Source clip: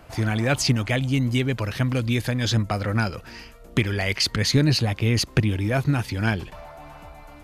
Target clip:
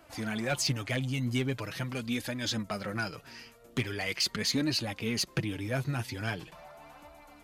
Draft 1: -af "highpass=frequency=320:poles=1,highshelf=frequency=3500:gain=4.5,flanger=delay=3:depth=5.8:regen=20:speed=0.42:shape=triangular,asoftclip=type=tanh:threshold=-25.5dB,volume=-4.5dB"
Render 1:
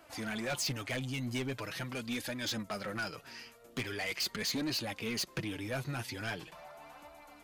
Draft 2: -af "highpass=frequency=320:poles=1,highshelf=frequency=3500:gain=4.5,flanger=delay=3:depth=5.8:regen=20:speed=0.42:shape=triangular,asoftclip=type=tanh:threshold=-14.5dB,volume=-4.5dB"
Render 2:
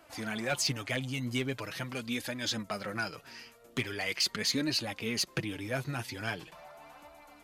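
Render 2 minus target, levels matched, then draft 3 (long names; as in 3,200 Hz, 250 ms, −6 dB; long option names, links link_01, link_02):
125 Hz band −4.0 dB
-af "highpass=frequency=130:poles=1,highshelf=frequency=3500:gain=4.5,flanger=delay=3:depth=5.8:regen=20:speed=0.42:shape=triangular,asoftclip=type=tanh:threshold=-14.5dB,volume=-4.5dB"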